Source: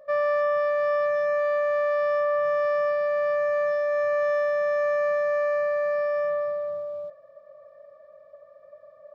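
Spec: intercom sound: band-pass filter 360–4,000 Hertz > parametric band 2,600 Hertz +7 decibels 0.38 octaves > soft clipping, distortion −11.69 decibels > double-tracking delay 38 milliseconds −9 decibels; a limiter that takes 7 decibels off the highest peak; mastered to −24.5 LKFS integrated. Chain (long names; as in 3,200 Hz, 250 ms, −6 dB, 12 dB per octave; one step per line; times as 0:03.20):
brickwall limiter −25 dBFS
band-pass filter 360–4,000 Hz
parametric band 2,600 Hz +7 dB 0.38 octaves
soft clipping −32.5 dBFS
double-tracking delay 38 ms −9 dB
level +11.5 dB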